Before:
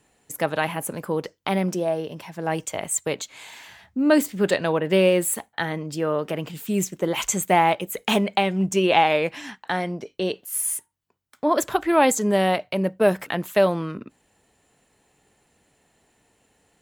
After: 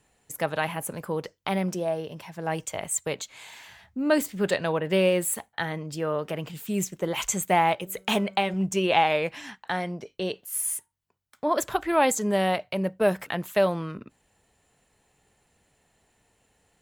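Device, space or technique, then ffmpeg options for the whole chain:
low shelf boost with a cut just above: -filter_complex "[0:a]asettb=1/sr,asplit=3[a][b][c];[a]atrim=end=7.744[d];[b]atrim=start=7.74:end=8.54,asetpts=PTS-STARTPTS,afade=t=in:d=0.004:c=qsin,afade=t=out:st=0.796:d=0.004:c=qsin,bandreject=f=190.4:t=h:w=4,bandreject=f=380.8:t=h:w=4,bandreject=f=571.2:t=h:w=4,bandreject=f=761.6:t=h:w=4,bandreject=f=952:t=h:w=4,bandreject=f=1.1424k:t=h:w=4,bandreject=f=1.3328k:t=h:w=4,bandreject=f=1.5232k:t=h:w=4[e];[c]atrim=start=8.536[f];[d][e]acrossfade=d=0.004:c1=hsin:c2=qsin[g];[g][f]acrossfade=d=0.004:c1=qsin:c2=hsin,lowshelf=f=85:g=6,equalizer=f=290:t=o:w=0.96:g=-4,volume=-3dB"

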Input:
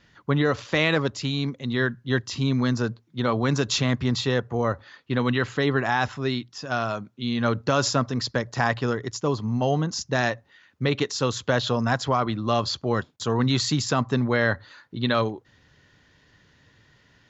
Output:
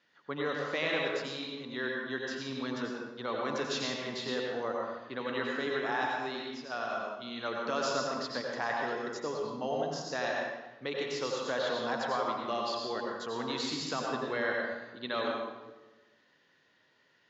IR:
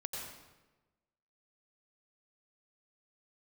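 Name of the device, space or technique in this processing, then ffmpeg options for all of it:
supermarket ceiling speaker: -filter_complex "[0:a]highpass=330,lowpass=5.9k[a];[1:a]atrim=start_sample=2205[b];[a][b]afir=irnorm=-1:irlink=0,volume=-7.5dB"

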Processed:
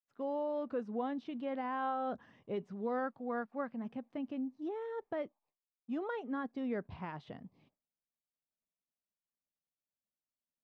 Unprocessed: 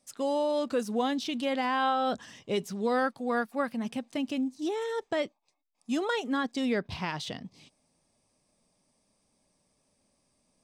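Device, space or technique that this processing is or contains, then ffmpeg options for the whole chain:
hearing-loss simulation: -af "lowpass=1.5k,agate=range=-33dB:threshold=-59dB:ratio=3:detection=peak,volume=-8dB"

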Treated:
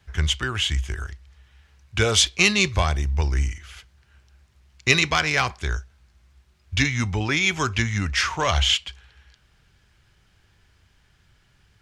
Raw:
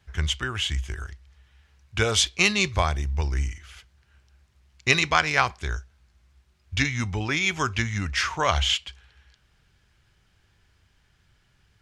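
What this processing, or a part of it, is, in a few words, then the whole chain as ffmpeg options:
one-band saturation: -filter_complex "[0:a]acrossover=split=530|2100[a][b][c];[b]asoftclip=type=tanh:threshold=-24.5dB[d];[a][d][c]amix=inputs=3:normalize=0,volume=3.5dB"

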